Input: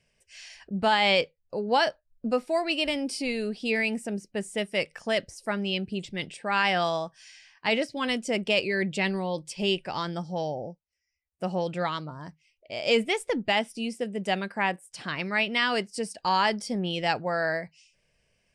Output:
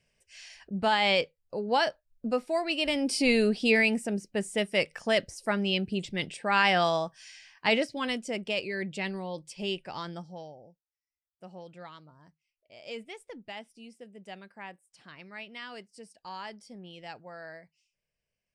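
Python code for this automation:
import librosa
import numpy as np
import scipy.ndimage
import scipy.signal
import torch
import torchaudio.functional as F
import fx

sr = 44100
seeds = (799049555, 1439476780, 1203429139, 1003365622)

y = fx.gain(x, sr, db=fx.line((2.77, -2.5), (3.34, 7.0), (4.07, 1.0), (7.67, 1.0), (8.4, -6.5), (10.14, -6.5), (10.58, -17.0)))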